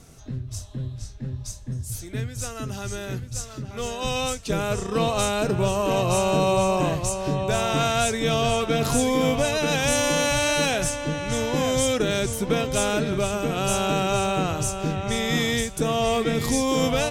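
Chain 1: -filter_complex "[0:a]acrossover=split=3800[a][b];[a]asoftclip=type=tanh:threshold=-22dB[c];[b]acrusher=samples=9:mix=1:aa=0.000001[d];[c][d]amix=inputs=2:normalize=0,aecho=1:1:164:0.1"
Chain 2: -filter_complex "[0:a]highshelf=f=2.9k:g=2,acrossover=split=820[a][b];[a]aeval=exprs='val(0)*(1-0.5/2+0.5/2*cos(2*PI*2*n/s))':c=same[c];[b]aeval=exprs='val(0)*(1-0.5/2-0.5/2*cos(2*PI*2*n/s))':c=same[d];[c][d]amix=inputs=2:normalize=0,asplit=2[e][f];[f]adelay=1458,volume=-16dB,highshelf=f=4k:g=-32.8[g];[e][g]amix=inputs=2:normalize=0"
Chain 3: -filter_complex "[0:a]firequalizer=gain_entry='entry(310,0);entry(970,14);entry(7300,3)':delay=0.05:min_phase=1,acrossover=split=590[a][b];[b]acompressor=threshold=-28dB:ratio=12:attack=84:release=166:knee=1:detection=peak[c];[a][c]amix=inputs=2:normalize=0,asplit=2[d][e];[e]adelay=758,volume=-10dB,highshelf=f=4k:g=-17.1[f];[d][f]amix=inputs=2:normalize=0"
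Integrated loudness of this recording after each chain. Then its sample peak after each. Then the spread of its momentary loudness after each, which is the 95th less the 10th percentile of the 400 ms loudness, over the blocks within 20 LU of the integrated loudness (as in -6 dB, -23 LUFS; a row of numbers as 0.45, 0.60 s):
-27.5, -25.5, -21.5 LUFS; -12.5, -9.5, -6.5 dBFS; 9, 13, 11 LU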